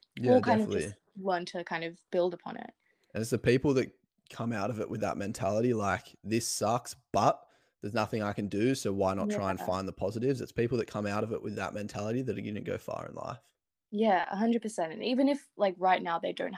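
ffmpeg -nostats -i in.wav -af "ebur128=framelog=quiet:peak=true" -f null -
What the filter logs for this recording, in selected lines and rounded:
Integrated loudness:
  I:         -31.4 LUFS
  Threshold: -41.8 LUFS
Loudness range:
  LRA:         2.9 LU
  Threshold: -52.4 LUFS
  LRA low:   -34.2 LUFS
  LRA high:  -31.3 LUFS
True peak:
  Peak:      -11.6 dBFS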